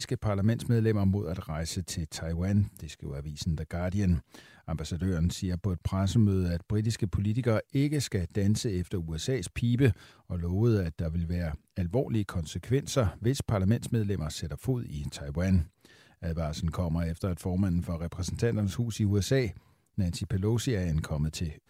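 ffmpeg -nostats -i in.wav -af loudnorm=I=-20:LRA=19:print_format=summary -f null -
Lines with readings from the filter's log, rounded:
Input Integrated:    -30.2 LUFS
Input True Peak:     -11.3 dBTP
Input LRA:             3.3 LU
Input Threshold:     -40.4 LUFS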